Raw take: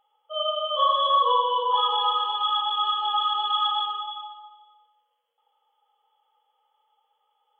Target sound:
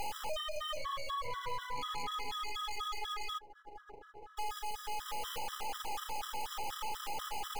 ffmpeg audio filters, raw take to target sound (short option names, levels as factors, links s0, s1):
-filter_complex "[0:a]aeval=exprs='val(0)+0.5*0.0398*sgn(val(0))':c=same,alimiter=limit=0.112:level=0:latency=1:release=66,asplit=3[s0][s1][s2];[s0]afade=t=out:st=3.37:d=0.02[s3];[s1]asuperpass=centerf=460:order=12:qfactor=1.1,afade=t=in:st=3.37:d=0.02,afade=t=out:st=4.37:d=0.02[s4];[s2]afade=t=in:st=4.37:d=0.02[s5];[s3][s4][s5]amix=inputs=3:normalize=0,aeval=exprs='max(val(0),0)':c=same,acompressor=threshold=0.02:ratio=6,afftfilt=real='re*gt(sin(2*PI*4.1*pts/sr)*(1-2*mod(floor(b*sr/1024/1000),2)),0)':imag='im*gt(sin(2*PI*4.1*pts/sr)*(1-2*mod(floor(b*sr/1024/1000),2)),0)':win_size=1024:overlap=0.75,volume=1.33"